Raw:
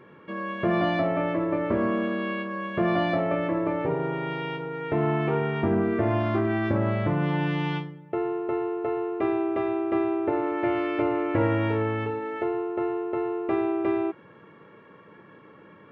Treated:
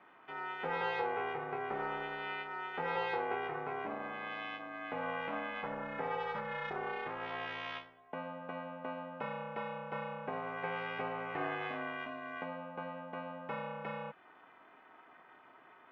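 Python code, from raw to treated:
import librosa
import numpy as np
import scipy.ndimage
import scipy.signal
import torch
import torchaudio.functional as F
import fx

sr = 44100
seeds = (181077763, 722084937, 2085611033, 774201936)

y = fx.dynamic_eq(x, sr, hz=820.0, q=2.1, threshold_db=-45.0, ratio=4.0, max_db=-8)
y = fx.ladder_highpass(y, sr, hz=560.0, resonance_pct=35)
y = y * np.sin(2.0 * np.pi * 180.0 * np.arange(len(y)) / sr)
y = F.gain(torch.from_numpy(y), 3.5).numpy()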